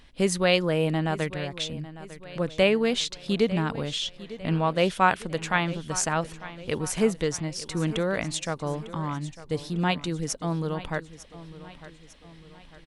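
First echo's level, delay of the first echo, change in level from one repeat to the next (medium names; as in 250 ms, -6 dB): -16.0 dB, 901 ms, -6.5 dB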